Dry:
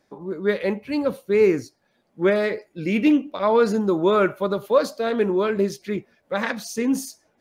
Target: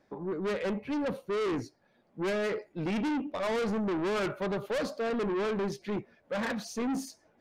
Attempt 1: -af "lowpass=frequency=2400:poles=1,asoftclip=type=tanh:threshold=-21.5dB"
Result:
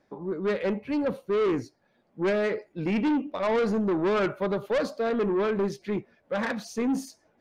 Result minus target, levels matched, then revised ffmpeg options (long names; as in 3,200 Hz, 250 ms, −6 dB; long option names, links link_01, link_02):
soft clipping: distortion −4 dB
-af "lowpass=frequency=2400:poles=1,asoftclip=type=tanh:threshold=-28.5dB"